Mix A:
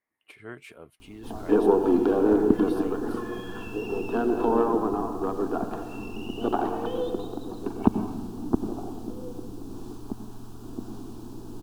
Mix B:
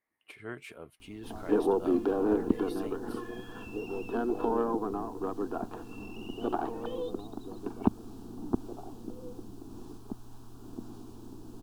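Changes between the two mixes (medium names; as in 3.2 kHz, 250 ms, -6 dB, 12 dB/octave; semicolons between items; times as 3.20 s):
background -3.0 dB; reverb: off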